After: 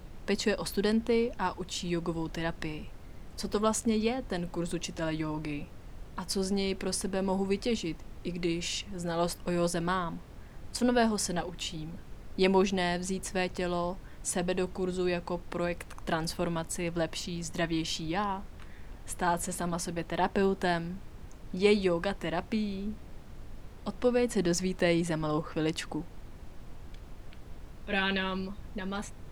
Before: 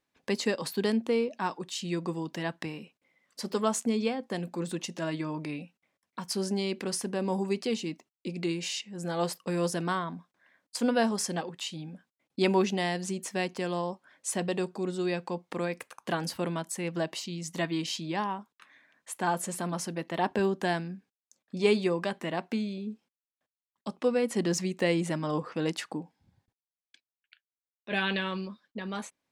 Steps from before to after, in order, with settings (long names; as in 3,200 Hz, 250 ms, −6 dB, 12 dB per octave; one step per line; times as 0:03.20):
background noise brown −43 dBFS